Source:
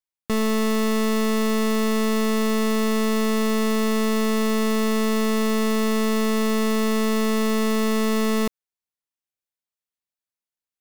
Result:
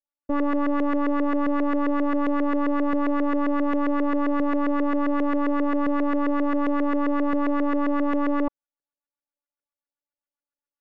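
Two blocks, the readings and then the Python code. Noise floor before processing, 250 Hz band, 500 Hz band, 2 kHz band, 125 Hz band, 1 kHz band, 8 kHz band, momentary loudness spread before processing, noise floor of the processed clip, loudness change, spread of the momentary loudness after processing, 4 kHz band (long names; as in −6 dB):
below −85 dBFS, −0.5 dB, −4.0 dB, −4.0 dB, can't be measured, +1.0 dB, below −30 dB, 0 LU, below −85 dBFS, −2.0 dB, 0 LU, below −15 dB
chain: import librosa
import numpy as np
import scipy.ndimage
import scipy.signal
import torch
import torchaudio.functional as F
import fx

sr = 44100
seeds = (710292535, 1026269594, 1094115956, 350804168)

y = fx.robotise(x, sr, hz=286.0)
y = fx.filter_lfo_lowpass(y, sr, shape='saw_up', hz=7.5, low_hz=450.0, high_hz=1700.0, q=2.4)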